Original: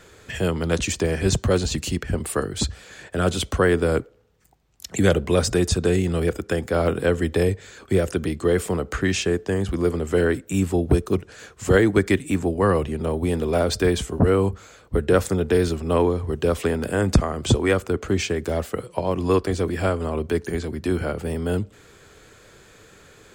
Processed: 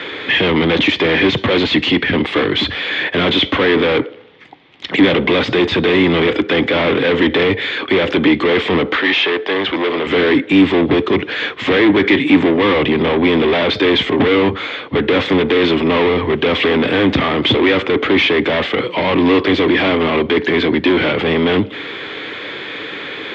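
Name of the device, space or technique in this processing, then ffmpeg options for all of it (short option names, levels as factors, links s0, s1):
overdrive pedal into a guitar cabinet: -filter_complex "[0:a]highpass=49,asplit=2[s0][s1];[s1]highpass=f=720:p=1,volume=56.2,asoftclip=type=tanh:threshold=0.596[s2];[s0][s2]amix=inputs=2:normalize=0,lowpass=f=3800:p=1,volume=0.501,highpass=89,equalizer=f=290:t=q:w=4:g=10,equalizer=f=670:t=q:w=4:g=-4,equalizer=f=1400:t=q:w=4:g=-5,equalizer=f=2100:t=q:w=4:g=7,equalizer=f=3400:t=q:w=4:g=9,lowpass=f=3600:w=0.5412,lowpass=f=3600:w=1.3066,asettb=1/sr,asplit=3[s3][s4][s5];[s3]atrim=end=8.964[s6];[s4]atrim=start=8.96:end=10.07,asetpts=PTS-STARTPTS,afade=t=in:d=0.004:c=qsin,afade=t=out:st=1.106:d=0.004:c=qsin,acrossover=split=380 7600:gain=0.2 1 0.0708[s7][s8][s9];[s7][s8][s9]amix=inputs=3:normalize=0[s10];[s5]atrim=start=10.066[s11];[s6][s10]acrossfade=d=0.004:c1=hsin:c2=qsin[s12];[s12][s11]acrossfade=d=0.004:c1=qsin:c2=hsin,volume=0.708"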